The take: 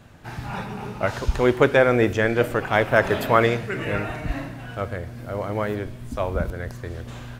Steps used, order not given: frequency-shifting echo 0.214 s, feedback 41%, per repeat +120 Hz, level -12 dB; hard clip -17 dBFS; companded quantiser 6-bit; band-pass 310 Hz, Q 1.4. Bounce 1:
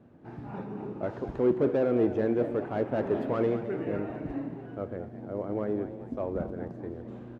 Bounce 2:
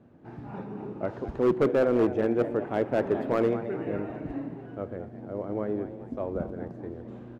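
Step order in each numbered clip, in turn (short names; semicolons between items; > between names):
hard clip > frequency-shifting echo > companded quantiser > band-pass; frequency-shifting echo > companded quantiser > band-pass > hard clip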